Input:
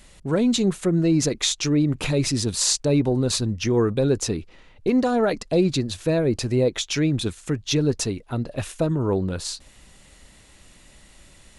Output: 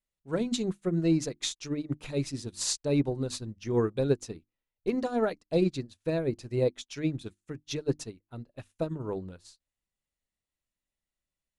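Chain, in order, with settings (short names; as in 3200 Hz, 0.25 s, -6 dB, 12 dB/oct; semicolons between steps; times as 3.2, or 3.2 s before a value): notches 50/100/150/200/250/300/350 Hz; upward expander 2.5:1, over -42 dBFS; gain -3 dB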